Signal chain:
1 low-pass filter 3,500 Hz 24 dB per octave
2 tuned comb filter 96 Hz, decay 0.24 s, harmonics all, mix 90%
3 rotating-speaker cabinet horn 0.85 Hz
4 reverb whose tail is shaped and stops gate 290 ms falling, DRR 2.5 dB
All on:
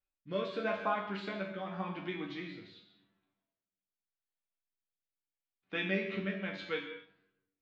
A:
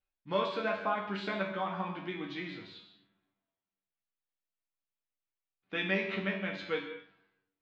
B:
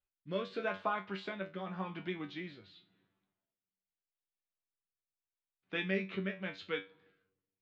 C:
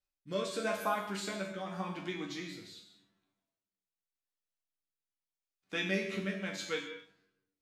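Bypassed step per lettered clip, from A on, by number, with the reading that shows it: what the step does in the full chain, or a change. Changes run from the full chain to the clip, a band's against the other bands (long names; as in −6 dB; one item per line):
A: 3, 125 Hz band −2.0 dB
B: 4, change in momentary loudness spread −4 LU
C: 1, 4 kHz band +3.5 dB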